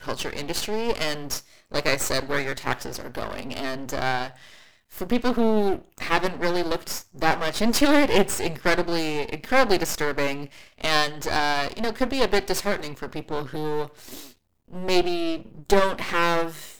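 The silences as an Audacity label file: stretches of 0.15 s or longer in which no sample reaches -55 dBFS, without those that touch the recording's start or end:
14.380000	14.680000	silence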